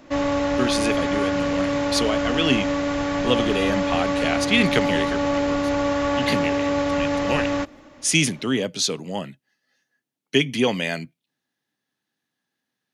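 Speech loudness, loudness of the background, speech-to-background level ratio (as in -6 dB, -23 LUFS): -24.5 LUFS, -23.0 LUFS, -1.5 dB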